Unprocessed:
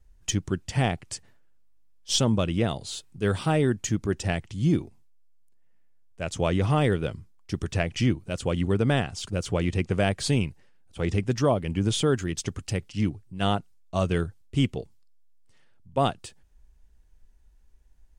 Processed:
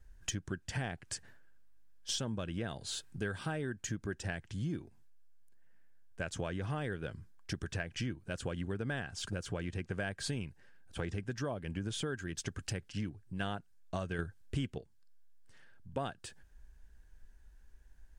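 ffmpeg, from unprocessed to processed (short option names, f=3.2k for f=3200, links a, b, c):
-filter_complex "[0:a]asplit=3[a][b][c];[a]atrim=end=14.192[d];[b]atrim=start=14.188:end=14.782,asetpts=PTS-STARTPTS,volume=8.5dB[e];[c]atrim=start=14.778[f];[d][e]acrossfade=d=0.004:c1=hsin:c2=hsin[g];[g][f]acrossfade=d=0.004:c1=hsin:c2=hsin,equalizer=f=1.6k:w=6:g=13,acompressor=threshold=-36dB:ratio=5"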